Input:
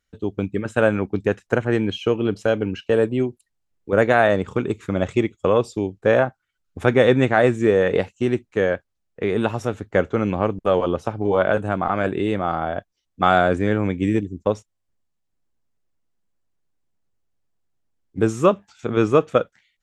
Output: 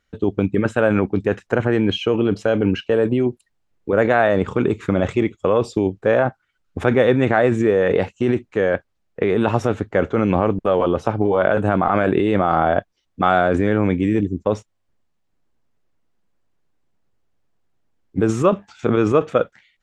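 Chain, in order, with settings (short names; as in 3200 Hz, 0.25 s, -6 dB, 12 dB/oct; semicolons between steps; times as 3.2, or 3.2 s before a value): LPF 2900 Hz 6 dB/oct; low shelf 140 Hz -4 dB; in parallel at 0 dB: negative-ratio compressor -25 dBFS, ratio -0.5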